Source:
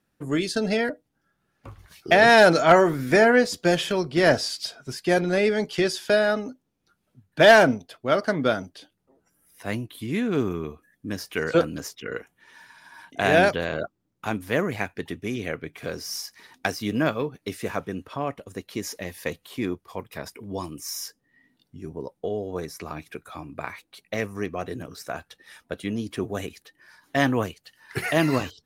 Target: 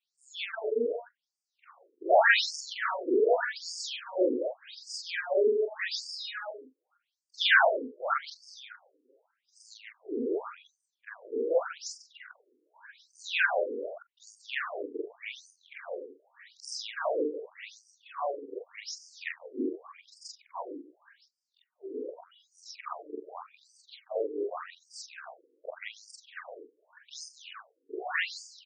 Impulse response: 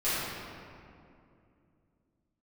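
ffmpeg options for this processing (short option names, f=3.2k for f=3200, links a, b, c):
-filter_complex "[0:a]afftfilt=real='re':imag='-im':win_size=4096:overlap=0.75,asplit=2[a][b];[b]adelay=140,highpass=300,lowpass=3.4k,asoftclip=type=hard:threshold=-16.5dB,volume=-9dB[c];[a][c]amix=inputs=2:normalize=0,acrossover=split=590[d][e];[d]asoftclip=type=tanh:threshold=-25.5dB[f];[f][e]amix=inputs=2:normalize=0,afftfilt=real='re*between(b*sr/1024,350*pow(6600/350,0.5+0.5*sin(2*PI*0.85*pts/sr))/1.41,350*pow(6600/350,0.5+0.5*sin(2*PI*0.85*pts/sr))*1.41)':imag='im*between(b*sr/1024,350*pow(6600/350,0.5+0.5*sin(2*PI*0.85*pts/sr))/1.41,350*pow(6600/350,0.5+0.5*sin(2*PI*0.85*pts/sr))*1.41)':win_size=1024:overlap=0.75,volume=4.5dB"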